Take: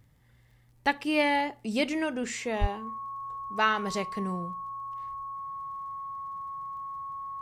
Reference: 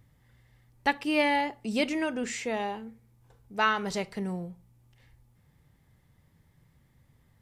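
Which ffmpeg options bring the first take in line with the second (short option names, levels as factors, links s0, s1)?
-filter_complex "[0:a]adeclick=t=4,bandreject=f=1100:w=30,asplit=3[s0][s1][s2];[s0]afade=t=out:st=2.6:d=0.02[s3];[s1]highpass=f=140:w=0.5412,highpass=f=140:w=1.3066,afade=t=in:st=2.6:d=0.02,afade=t=out:st=2.72:d=0.02[s4];[s2]afade=t=in:st=2.72:d=0.02[s5];[s3][s4][s5]amix=inputs=3:normalize=0"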